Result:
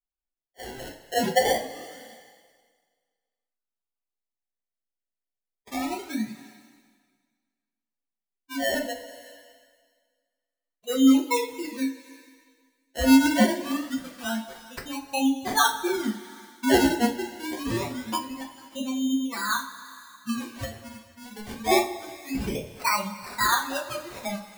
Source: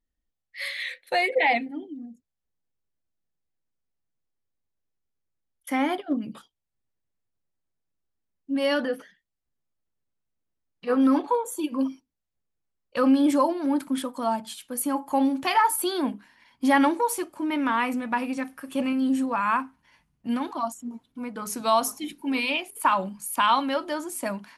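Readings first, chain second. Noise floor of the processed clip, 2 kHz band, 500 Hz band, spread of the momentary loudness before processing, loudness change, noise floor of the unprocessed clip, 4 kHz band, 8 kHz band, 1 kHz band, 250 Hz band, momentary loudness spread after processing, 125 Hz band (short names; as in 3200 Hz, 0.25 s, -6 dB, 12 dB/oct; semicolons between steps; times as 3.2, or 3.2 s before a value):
under -85 dBFS, -0.5 dB, -1.0 dB, 13 LU, -0.5 dB, -83 dBFS, +2.5 dB, +2.0 dB, -3.5 dB, 0.0 dB, 20 LU, n/a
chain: per-bin expansion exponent 2; notches 60/120/180/240/300/360 Hz; treble ducked by the level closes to 2200 Hz, closed at -26 dBFS; decimation with a swept rate 25×, swing 100% 0.25 Hz; two-slope reverb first 0.24 s, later 1.7 s, from -18 dB, DRR -1 dB; mismatched tape noise reduction encoder only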